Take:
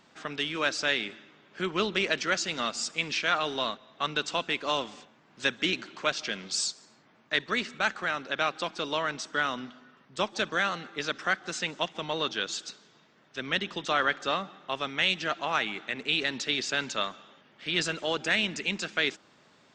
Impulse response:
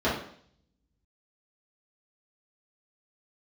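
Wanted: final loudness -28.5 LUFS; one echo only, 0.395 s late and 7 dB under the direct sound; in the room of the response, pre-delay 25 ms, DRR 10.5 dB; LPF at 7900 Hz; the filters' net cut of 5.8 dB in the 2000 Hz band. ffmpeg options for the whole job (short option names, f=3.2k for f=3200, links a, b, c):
-filter_complex "[0:a]lowpass=7.9k,equalizer=f=2k:t=o:g=-8,aecho=1:1:395:0.447,asplit=2[a][b];[1:a]atrim=start_sample=2205,adelay=25[c];[b][c]afir=irnorm=-1:irlink=0,volume=-24.5dB[d];[a][d]amix=inputs=2:normalize=0,volume=3dB"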